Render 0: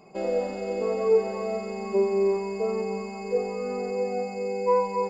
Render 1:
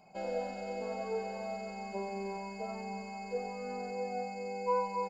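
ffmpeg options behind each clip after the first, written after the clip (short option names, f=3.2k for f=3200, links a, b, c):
-af "lowshelf=f=410:g=-4,aecho=1:1:1.3:0.7,bandreject=f=73.44:t=h:w=4,bandreject=f=146.88:t=h:w=4,bandreject=f=220.32:t=h:w=4,bandreject=f=293.76:t=h:w=4,bandreject=f=367.2:t=h:w=4,bandreject=f=440.64:t=h:w=4,bandreject=f=514.08:t=h:w=4,bandreject=f=587.52:t=h:w=4,bandreject=f=660.96:t=h:w=4,bandreject=f=734.4:t=h:w=4,bandreject=f=807.84:t=h:w=4,bandreject=f=881.28:t=h:w=4,bandreject=f=954.72:t=h:w=4,bandreject=f=1.02816k:t=h:w=4,bandreject=f=1.1016k:t=h:w=4,bandreject=f=1.17504k:t=h:w=4,bandreject=f=1.24848k:t=h:w=4,bandreject=f=1.32192k:t=h:w=4,bandreject=f=1.39536k:t=h:w=4,bandreject=f=1.4688k:t=h:w=4,bandreject=f=1.54224k:t=h:w=4,bandreject=f=1.61568k:t=h:w=4,bandreject=f=1.68912k:t=h:w=4,bandreject=f=1.76256k:t=h:w=4,bandreject=f=1.836k:t=h:w=4,bandreject=f=1.90944k:t=h:w=4,bandreject=f=1.98288k:t=h:w=4,bandreject=f=2.05632k:t=h:w=4,bandreject=f=2.12976k:t=h:w=4,bandreject=f=2.2032k:t=h:w=4,bandreject=f=2.27664k:t=h:w=4,bandreject=f=2.35008k:t=h:w=4,bandreject=f=2.42352k:t=h:w=4,bandreject=f=2.49696k:t=h:w=4,bandreject=f=2.5704k:t=h:w=4,bandreject=f=2.64384k:t=h:w=4,bandreject=f=2.71728k:t=h:w=4,bandreject=f=2.79072k:t=h:w=4,volume=-6.5dB"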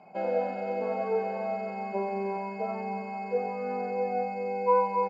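-af "highpass=190,lowpass=2.2k,volume=8dB"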